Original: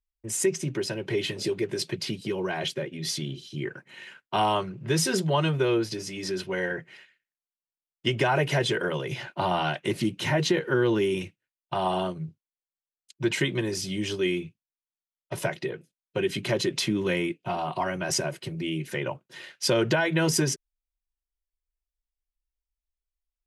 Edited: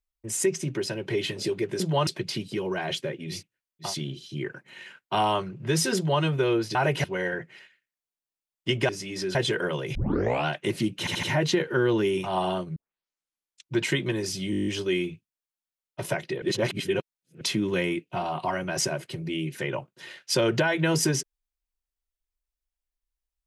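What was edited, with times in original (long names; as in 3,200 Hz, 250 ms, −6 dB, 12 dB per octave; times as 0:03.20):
0:05.17–0:05.44: duplicate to 0:01.80
0:05.96–0:06.42: swap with 0:08.27–0:08.56
0:09.16: tape start 0.51 s
0:10.20: stutter 0.08 s, 4 plays
0:11.23–0:11.75: move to 0:03.08, crossfade 0.16 s
0:12.25: tape start 1.00 s
0:14.00: stutter 0.02 s, 9 plays
0:15.75–0:16.74: reverse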